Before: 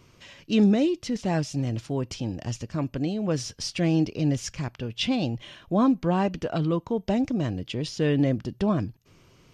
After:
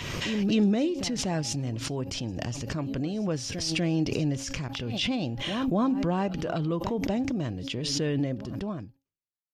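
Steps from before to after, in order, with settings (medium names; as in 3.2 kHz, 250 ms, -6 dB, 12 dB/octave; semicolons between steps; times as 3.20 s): fade out at the end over 1.69 s; de-hum 272.4 Hz, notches 3; expander -49 dBFS; pre-echo 243 ms -20 dB; swell ahead of each attack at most 26 dB/s; trim -4 dB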